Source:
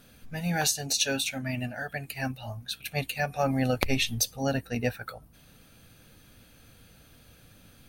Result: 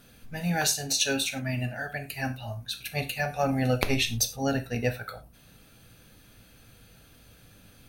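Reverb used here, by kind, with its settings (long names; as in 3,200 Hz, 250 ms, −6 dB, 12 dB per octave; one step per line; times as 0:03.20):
reverb whose tail is shaped and stops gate 130 ms falling, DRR 7 dB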